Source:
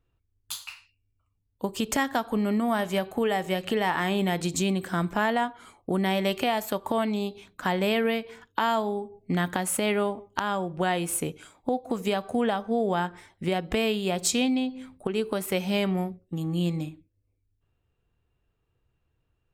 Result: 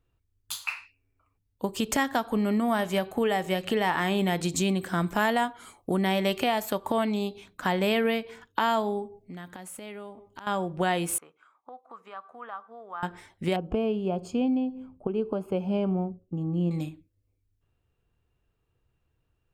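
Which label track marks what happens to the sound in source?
0.640000	1.370000	time-frequency box 270–2700 Hz +11 dB
5.060000	5.940000	treble shelf 5.7 kHz +9 dB
9.180000	10.470000	compression 2:1, threshold -51 dBFS
11.180000	13.030000	band-pass filter 1.2 kHz, Q 5.3
13.560000	16.710000	boxcar filter over 23 samples

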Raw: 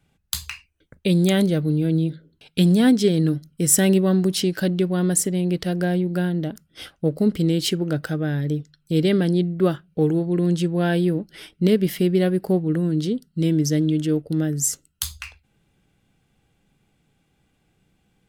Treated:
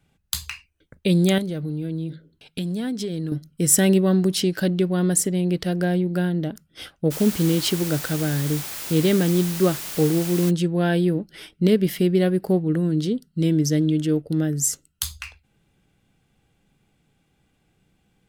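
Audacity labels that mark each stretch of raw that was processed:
1.380000	3.320000	compression 5:1, threshold -25 dBFS
7.100000	10.490000	added noise white -33 dBFS

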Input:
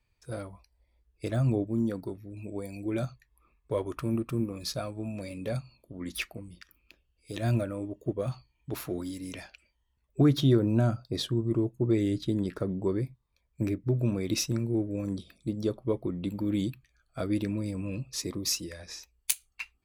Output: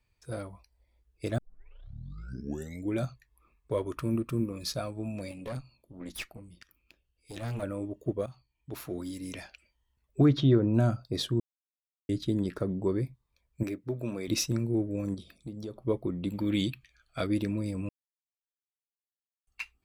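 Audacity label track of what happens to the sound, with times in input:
1.380000	1.380000	tape start 1.57 s
3.720000	4.690000	band-stop 760 Hz, Q 5.3
5.310000	7.630000	valve stage drive 31 dB, bias 0.7
8.260000	9.260000	fade in, from -15 dB
10.250000	10.730000	low-pass 5.2 kHz -> 2 kHz
11.400000	12.090000	mute
13.630000	14.280000	high-pass 410 Hz 6 dB/octave
15.140000	15.810000	compression 3:1, threshold -38 dBFS
16.330000	17.270000	peaking EQ 2.9 kHz +10 dB 1.8 oct
17.890000	19.470000	mute

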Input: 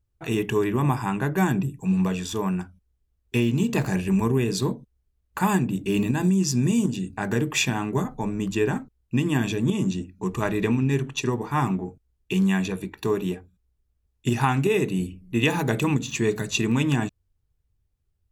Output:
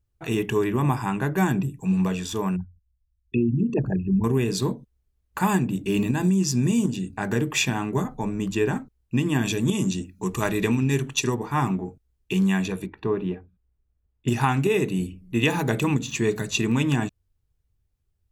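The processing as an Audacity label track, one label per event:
2.560000	4.240000	resonances exaggerated exponent 3
9.450000	11.350000	treble shelf 3.8 kHz +9.5 dB
12.860000	14.280000	distance through air 380 m

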